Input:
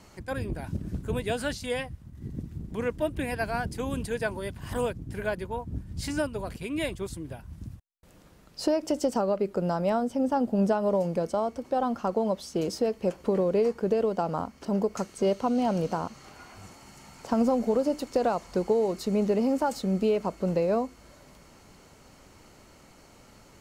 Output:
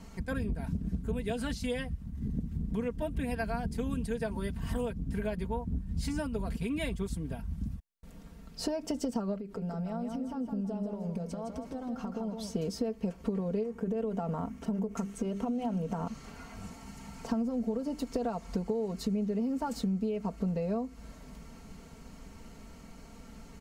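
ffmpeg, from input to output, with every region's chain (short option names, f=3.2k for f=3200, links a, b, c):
-filter_complex "[0:a]asettb=1/sr,asplit=3[a][b][c];[a]atrim=end=9.394[d];[b]atrim=start=9.39:end=12.54,asetpts=PTS-STARTPTS,afade=t=in:d=0.004:c=qsin,afade=t=out:st=3.146:d=0.004:c=qsin,acompressor=threshold=-38dB:ratio=6:attack=3.2:release=140:knee=1:detection=peak,aecho=1:1:162|324|486|648:0.531|0.17|0.0544|0.0174,atrim=end_sample=138915[e];[c]atrim=start=12.536[f];[d][e]acrossfade=d=0.004:c1=hsin:c2=qsin[g];[g][f]acrossfade=d=0.004:c1=qsin:c2=hsin,asettb=1/sr,asplit=3[h][i][j];[h]atrim=end=13.634[k];[i]atrim=start=13.63:end=16.07,asetpts=PTS-STARTPTS,afade=t=in:d=0.004:c=qsin,afade=t=out:st=2.436:d=0.004:c=qsin,bandreject=f=50:t=h:w=6,bandreject=f=100:t=h:w=6,bandreject=f=150:t=h:w=6,bandreject=f=200:t=h:w=6,bandreject=f=250:t=h:w=6,bandreject=f=300:t=h:w=6,bandreject=f=350:t=h:w=6,bandreject=f=400:t=h:w=6,acompressor=threshold=-28dB:ratio=2.5:attack=3.2:release=140:knee=1:detection=peak,equalizer=f=4.6k:w=3:g=-9.5[l];[j]atrim=start=16.066[m];[k][l]acrossfade=d=0.004:c1=hsin:c2=qsin[n];[n][m]acrossfade=d=0.004:c1=qsin:c2=hsin,bass=f=250:g=10,treble=f=4k:g=-1,aecho=1:1:4.4:0.7,acompressor=threshold=-27dB:ratio=6,volume=-2.5dB"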